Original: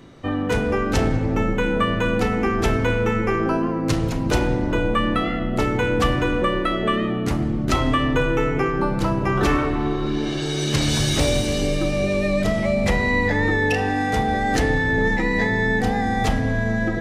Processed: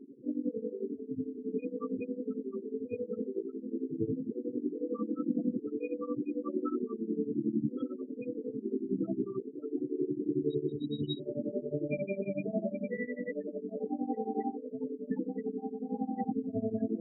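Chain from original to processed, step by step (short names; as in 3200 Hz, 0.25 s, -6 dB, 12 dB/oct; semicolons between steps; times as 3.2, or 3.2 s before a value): speaker cabinet 140–5400 Hz, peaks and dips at 260 Hz +9 dB, 420 Hz +9 dB, 1000 Hz -5 dB, 1700 Hz -8 dB, 2500 Hz +6 dB, 4100 Hz +3 dB; negative-ratio compressor -21 dBFS, ratio -0.5; diffused feedback echo 1.261 s, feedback 46%, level -8 dB; loudest bins only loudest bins 8; 8.54–8.95 dynamic EQ 980 Hz, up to +6 dB, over -46 dBFS, Q 1.9; tremolo triangle 11 Hz, depth 95%; gain -8 dB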